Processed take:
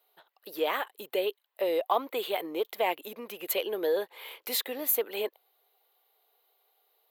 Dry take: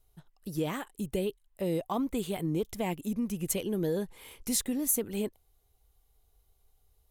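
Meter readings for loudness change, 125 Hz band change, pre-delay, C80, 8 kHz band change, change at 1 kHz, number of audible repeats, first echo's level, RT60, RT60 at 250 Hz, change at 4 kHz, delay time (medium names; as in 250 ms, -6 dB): +1.5 dB, under -25 dB, no reverb, no reverb, -5.5 dB, +8.0 dB, no echo, no echo, no reverb, no reverb, +6.5 dB, no echo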